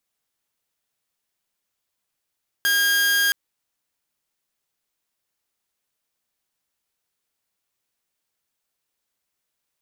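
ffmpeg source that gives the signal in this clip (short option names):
-f lavfi -i "aevalsrc='0.188*(2*mod(1620*t,1)-1)':d=0.67:s=44100"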